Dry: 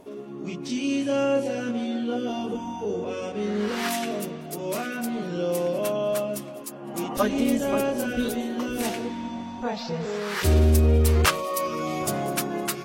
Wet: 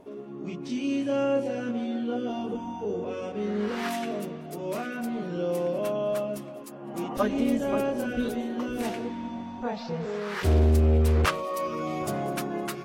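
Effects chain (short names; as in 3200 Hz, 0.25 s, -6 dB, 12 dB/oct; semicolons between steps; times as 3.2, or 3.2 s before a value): high shelf 3500 Hz -9.5 dB; 9.87–11.61 Doppler distortion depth 0.28 ms; gain -2 dB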